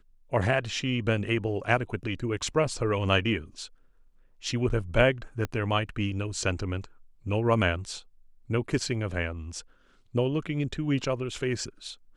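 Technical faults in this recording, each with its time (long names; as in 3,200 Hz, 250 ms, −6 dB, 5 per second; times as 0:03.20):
0:05.45: click −17 dBFS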